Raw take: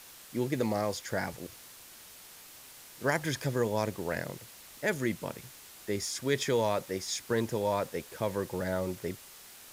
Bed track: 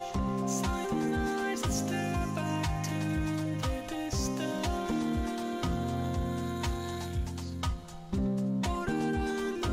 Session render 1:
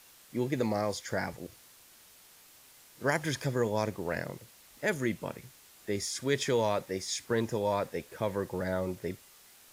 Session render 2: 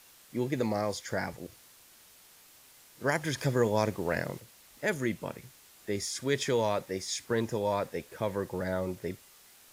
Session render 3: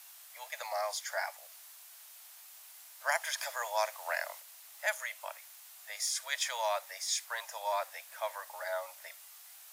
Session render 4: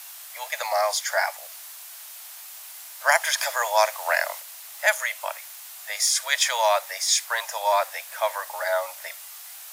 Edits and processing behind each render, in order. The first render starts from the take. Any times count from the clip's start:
noise print and reduce 6 dB
3.38–4.40 s: gain +3 dB
steep high-pass 620 Hz 72 dB/octave; treble shelf 9.9 kHz +8.5 dB
trim +12 dB

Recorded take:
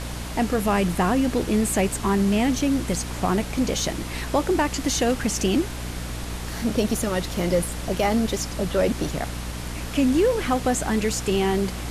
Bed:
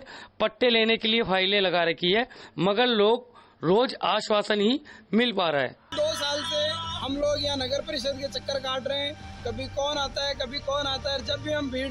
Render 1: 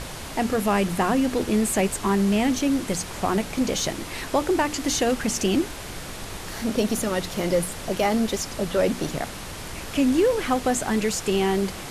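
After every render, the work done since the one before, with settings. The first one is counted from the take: hum notches 60/120/180/240/300 Hz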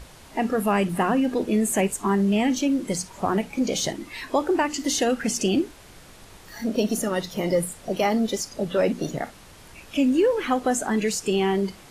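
noise print and reduce 12 dB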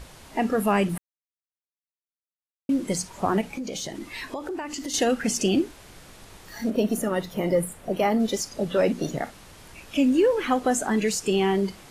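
0.98–2.69 s: mute; 3.41–4.94 s: compression, threshold -29 dBFS; 6.70–8.20 s: peaking EQ 5.3 kHz -9 dB 1.4 oct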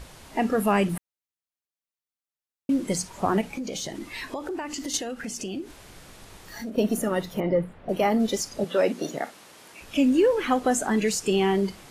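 4.97–6.78 s: compression 3:1, threshold -33 dBFS; 7.40–7.89 s: distance through air 320 m; 8.64–9.81 s: high-pass 260 Hz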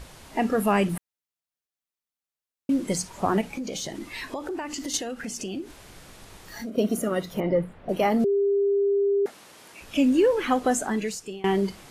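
6.66–7.30 s: comb of notches 880 Hz; 8.24–9.26 s: bleep 400 Hz -19 dBFS; 10.70–11.44 s: fade out, to -23.5 dB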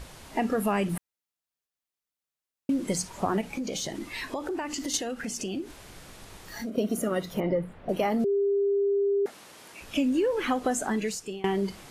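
compression 4:1, threshold -23 dBFS, peak gain reduction 6.5 dB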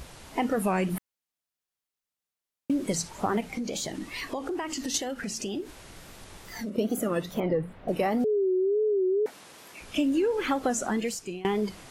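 wow and flutter 130 cents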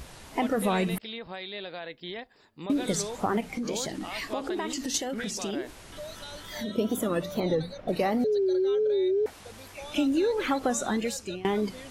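add bed -15.5 dB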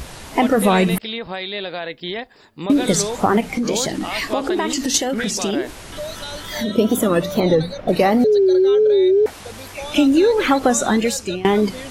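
trim +11 dB

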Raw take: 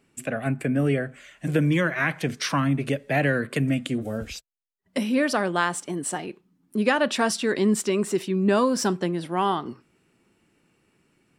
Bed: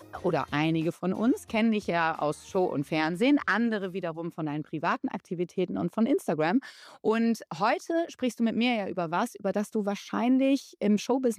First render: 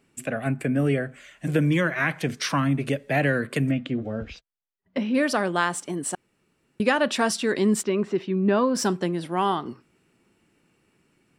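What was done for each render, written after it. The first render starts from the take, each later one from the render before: 3.71–5.15 s: distance through air 230 m; 6.15–6.80 s: room tone; 7.83–8.75 s: distance through air 230 m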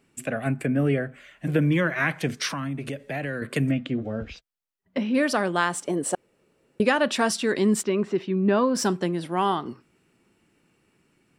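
0.66–1.90 s: peaking EQ 7.3 kHz -9 dB 1.3 oct; 2.49–3.42 s: compression 2.5:1, threshold -30 dBFS; 5.84–6.85 s: peaking EQ 520 Hz +11.5 dB 0.88 oct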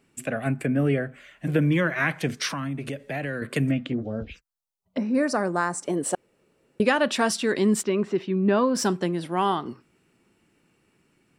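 3.92–5.83 s: touch-sensitive phaser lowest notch 290 Hz, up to 3.2 kHz, full sweep at -24 dBFS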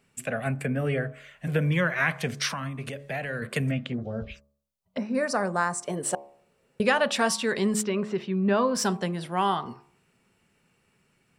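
peaking EQ 310 Hz -13.5 dB 0.4 oct; de-hum 70.57 Hz, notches 17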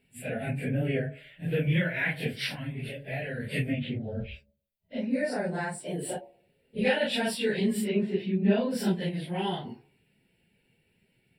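phase randomisation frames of 100 ms; static phaser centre 2.8 kHz, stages 4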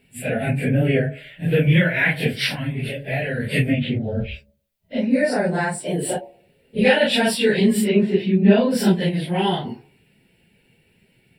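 trim +10 dB; peak limiter -2 dBFS, peak gain reduction 1 dB

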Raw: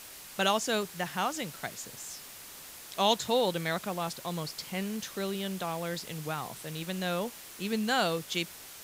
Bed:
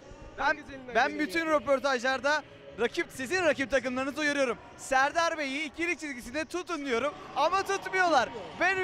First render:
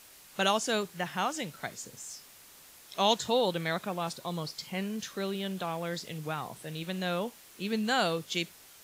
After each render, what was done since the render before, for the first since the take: noise print and reduce 7 dB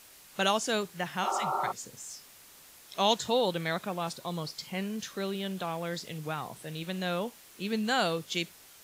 1.26–1.69 s: spectral replace 230–1400 Hz before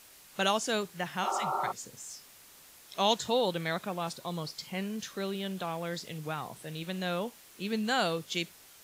trim -1 dB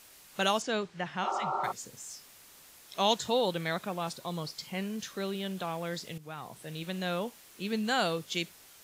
0.62–1.64 s: distance through air 110 m; 6.18–6.90 s: fade in equal-power, from -13 dB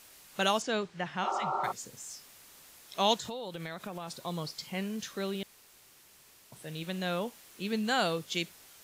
3.15–4.18 s: compression 10:1, threshold -35 dBFS; 5.43–6.52 s: room tone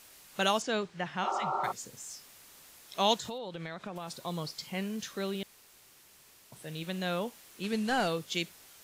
3.38–3.96 s: distance through air 81 m; 7.63–8.08 s: one-bit delta coder 64 kbps, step -43 dBFS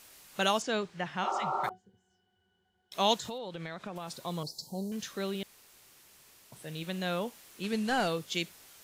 1.69–2.92 s: pitch-class resonator F#, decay 0.14 s; 4.43–4.92 s: Chebyshev band-stop 900–4100 Hz, order 4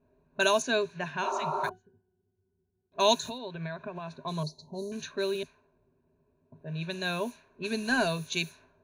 level-controlled noise filter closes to 320 Hz, open at -31 dBFS; rippled EQ curve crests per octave 1.5, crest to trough 15 dB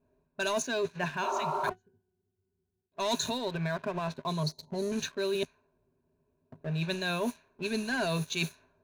waveshaping leveller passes 2; reverse; compression 10:1, threshold -28 dBFS, peak gain reduction 13 dB; reverse

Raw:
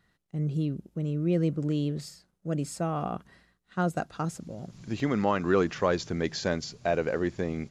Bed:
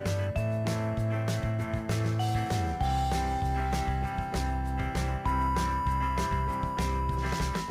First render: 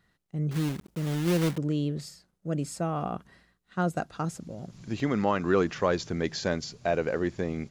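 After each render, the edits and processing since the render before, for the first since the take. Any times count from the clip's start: 0.51–1.59 s: block-companded coder 3-bit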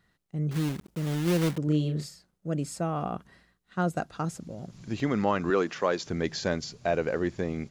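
1.64–2.07 s: doubling 33 ms -4 dB; 5.50–6.07 s: Bessel high-pass 270 Hz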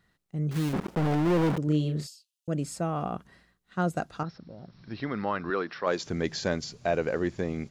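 0.73–1.57 s: overdrive pedal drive 36 dB, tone 1.2 kHz, clips at -18 dBFS; 2.07–2.48 s: steep high-pass 2.6 kHz 96 dB/octave; 4.23–5.87 s: rippled Chebyshev low-pass 5.6 kHz, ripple 6 dB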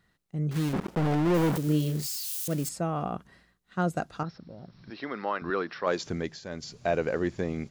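1.34–2.69 s: zero-crossing glitches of -28.5 dBFS; 4.90–5.42 s: high-pass 320 Hz; 6.10–6.78 s: dip -12 dB, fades 0.30 s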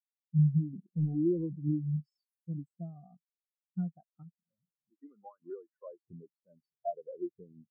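compression 5:1, threshold -31 dBFS, peak gain reduction 10 dB; spectral contrast expander 4:1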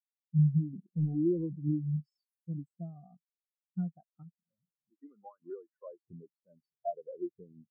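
no audible change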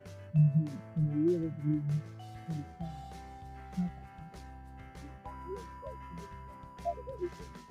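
add bed -18.5 dB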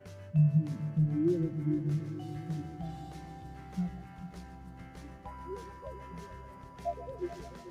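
multi-head delay 145 ms, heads first and third, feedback 67%, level -14.5 dB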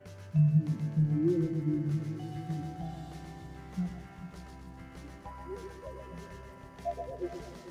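thinning echo 127 ms, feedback 52%, high-pass 330 Hz, level -4 dB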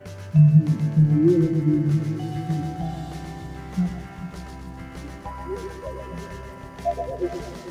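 trim +10.5 dB

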